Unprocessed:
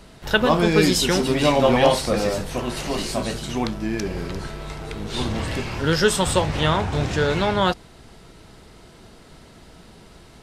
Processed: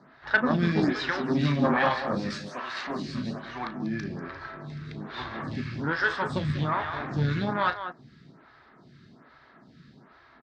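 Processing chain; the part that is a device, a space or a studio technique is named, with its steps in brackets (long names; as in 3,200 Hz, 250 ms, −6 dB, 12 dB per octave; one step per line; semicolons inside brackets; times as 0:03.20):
0:02.30–0:02.87: spectral tilt +4 dB per octave
loudspeakers that aren't time-aligned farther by 12 metres −11 dB, 66 metres −10 dB
vibe pedal into a guitar amplifier (phaser with staggered stages 1.2 Hz; tube saturation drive 11 dB, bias 0.7; loudspeaker in its box 99–4,600 Hz, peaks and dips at 140 Hz +9 dB, 250 Hz +6 dB, 470 Hz −7 dB, 1,200 Hz +7 dB, 1,700 Hz +9 dB, 2,900 Hz −7 dB)
level −2.5 dB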